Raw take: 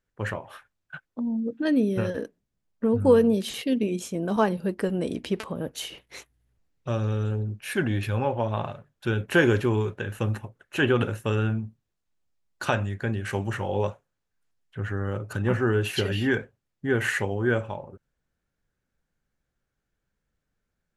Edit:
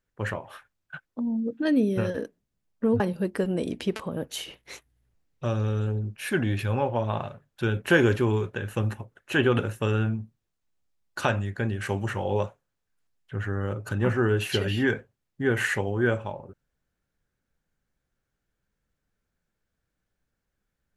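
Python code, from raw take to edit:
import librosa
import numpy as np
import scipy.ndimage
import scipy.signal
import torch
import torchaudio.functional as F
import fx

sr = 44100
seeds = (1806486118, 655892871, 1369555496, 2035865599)

y = fx.edit(x, sr, fx.cut(start_s=3.0, length_s=1.44), tone=tone)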